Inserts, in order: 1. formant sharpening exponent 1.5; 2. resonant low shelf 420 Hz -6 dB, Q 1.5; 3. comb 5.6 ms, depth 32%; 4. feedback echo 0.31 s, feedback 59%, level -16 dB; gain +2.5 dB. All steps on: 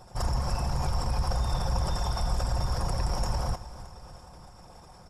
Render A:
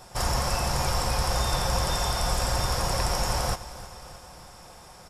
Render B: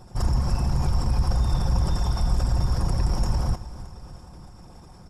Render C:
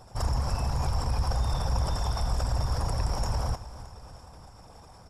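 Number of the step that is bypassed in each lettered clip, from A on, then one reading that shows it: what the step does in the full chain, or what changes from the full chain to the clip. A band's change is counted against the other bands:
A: 1, 125 Hz band -8.0 dB; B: 2, 250 Hz band +7.0 dB; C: 3, 125 Hz band +2.0 dB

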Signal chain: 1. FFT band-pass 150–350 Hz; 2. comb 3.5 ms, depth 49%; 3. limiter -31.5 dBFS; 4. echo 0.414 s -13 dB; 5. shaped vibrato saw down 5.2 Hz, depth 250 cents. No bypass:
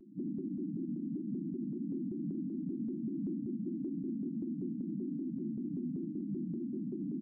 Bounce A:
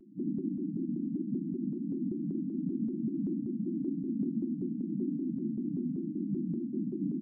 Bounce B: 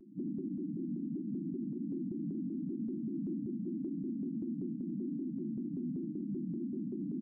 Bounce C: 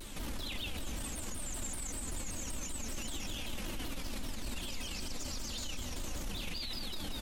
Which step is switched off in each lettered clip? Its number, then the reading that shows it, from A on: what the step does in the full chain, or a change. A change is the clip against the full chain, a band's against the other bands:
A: 3, mean gain reduction 3.5 dB; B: 4, crest factor change -1.5 dB; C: 1, momentary loudness spread change +1 LU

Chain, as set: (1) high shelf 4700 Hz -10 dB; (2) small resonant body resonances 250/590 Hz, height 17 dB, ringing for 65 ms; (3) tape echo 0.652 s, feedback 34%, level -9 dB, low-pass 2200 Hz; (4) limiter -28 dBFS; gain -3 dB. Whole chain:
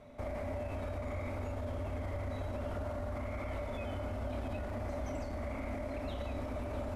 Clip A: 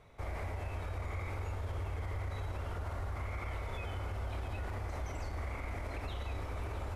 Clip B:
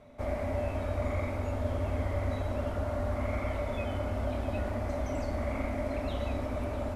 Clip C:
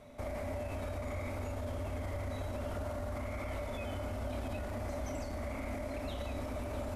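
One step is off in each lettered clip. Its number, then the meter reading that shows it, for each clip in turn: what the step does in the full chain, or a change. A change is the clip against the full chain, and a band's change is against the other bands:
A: 2, 250 Hz band -10.0 dB; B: 4, mean gain reduction 5.5 dB; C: 1, 8 kHz band +7.0 dB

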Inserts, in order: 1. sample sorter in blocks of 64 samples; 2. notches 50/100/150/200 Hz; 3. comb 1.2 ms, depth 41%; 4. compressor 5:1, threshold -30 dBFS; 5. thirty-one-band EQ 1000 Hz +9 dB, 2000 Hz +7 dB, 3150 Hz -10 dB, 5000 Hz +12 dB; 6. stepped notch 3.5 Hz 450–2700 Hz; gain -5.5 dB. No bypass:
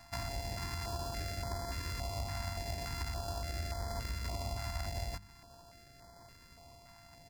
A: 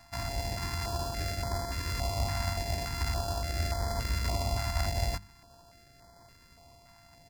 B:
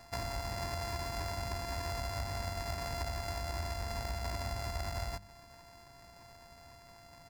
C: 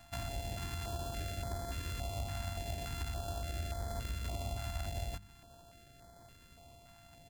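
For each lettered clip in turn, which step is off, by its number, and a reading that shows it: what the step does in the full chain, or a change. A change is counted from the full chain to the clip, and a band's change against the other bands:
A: 4, momentary loudness spread change -15 LU; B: 6, 1 kHz band +2.5 dB; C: 5, 2 kHz band -2.0 dB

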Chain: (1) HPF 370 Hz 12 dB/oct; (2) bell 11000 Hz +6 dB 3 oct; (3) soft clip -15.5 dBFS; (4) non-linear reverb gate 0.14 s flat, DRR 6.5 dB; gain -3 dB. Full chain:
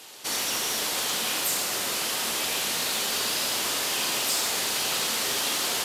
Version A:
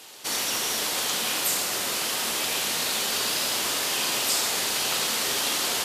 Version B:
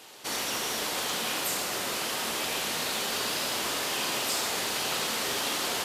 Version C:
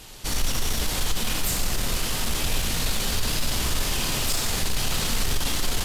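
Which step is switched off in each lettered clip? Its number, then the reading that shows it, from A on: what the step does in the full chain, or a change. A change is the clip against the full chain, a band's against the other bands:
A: 3, distortion -21 dB; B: 2, 8 kHz band -5.0 dB; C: 1, 125 Hz band +20.0 dB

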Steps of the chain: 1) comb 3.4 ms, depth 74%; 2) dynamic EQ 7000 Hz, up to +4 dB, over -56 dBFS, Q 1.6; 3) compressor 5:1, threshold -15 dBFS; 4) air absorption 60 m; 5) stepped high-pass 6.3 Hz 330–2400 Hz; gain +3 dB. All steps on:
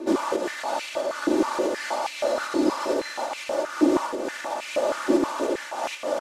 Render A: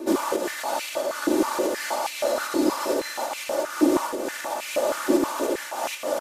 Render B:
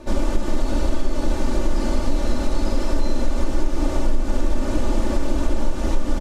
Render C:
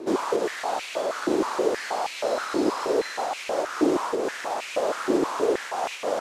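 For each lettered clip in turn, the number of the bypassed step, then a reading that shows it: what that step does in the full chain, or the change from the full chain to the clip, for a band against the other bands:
4, 8 kHz band +5.5 dB; 5, 250 Hz band +4.0 dB; 1, 250 Hz band -2.5 dB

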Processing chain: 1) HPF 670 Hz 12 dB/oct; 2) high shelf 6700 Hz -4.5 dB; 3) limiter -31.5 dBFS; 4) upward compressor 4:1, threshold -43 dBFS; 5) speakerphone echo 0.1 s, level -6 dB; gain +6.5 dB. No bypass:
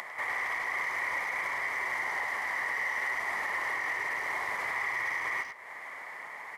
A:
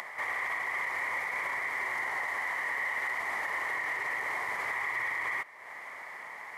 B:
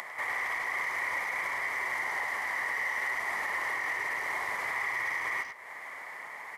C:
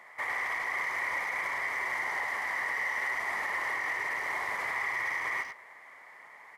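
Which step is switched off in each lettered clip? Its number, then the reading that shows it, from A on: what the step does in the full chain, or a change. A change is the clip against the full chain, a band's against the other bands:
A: 5, echo-to-direct -16.5 dB to none; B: 2, 8 kHz band +2.0 dB; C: 4, momentary loudness spread change +6 LU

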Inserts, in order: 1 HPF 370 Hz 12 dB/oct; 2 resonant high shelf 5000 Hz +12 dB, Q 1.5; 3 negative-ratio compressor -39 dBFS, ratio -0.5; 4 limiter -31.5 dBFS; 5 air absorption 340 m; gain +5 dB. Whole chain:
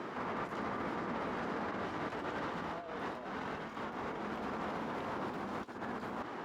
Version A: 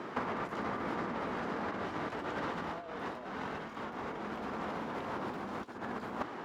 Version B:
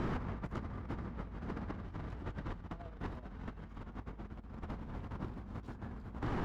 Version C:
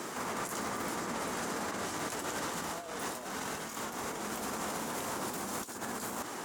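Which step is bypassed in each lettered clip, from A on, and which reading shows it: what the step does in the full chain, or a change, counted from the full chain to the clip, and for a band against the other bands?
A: 4, crest factor change +8.0 dB; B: 1, 125 Hz band +16.5 dB; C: 5, 8 kHz band +24.0 dB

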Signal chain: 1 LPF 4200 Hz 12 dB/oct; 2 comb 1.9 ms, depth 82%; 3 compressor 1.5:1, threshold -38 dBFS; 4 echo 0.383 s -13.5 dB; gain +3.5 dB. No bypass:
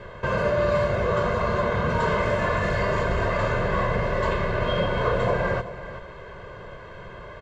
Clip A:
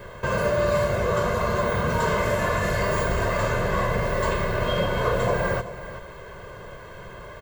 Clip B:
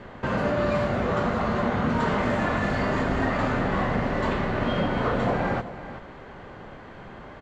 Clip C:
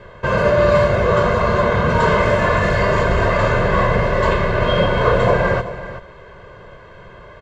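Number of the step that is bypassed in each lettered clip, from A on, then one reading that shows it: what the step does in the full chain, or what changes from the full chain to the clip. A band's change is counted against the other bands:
1, 4 kHz band +1.5 dB; 2, 250 Hz band +7.0 dB; 3, mean gain reduction 6.0 dB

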